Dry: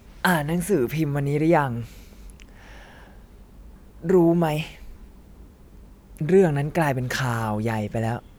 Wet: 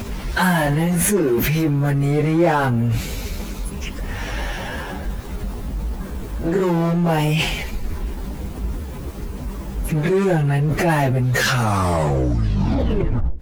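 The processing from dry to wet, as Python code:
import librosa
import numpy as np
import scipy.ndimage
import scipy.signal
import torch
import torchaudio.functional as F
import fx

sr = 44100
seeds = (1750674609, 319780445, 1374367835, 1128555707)

p1 = fx.tape_stop_end(x, sr, length_s=1.23)
p2 = fx.peak_eq(p1, sr, hz=68.0, db=4.5, octaves=0.21)
p3 = fx.power_curve(p2, sr, exponent=0.7)
p4 = fx.stretch_vocoder_free(p3, sr, factor=1.6)
p5 = fx.over_compress(p4, sr, threshold_db=-28.0, ratio=-1.0)
y = p4 + F.gain(torch.from_numpy(p5), 2.5).numpy()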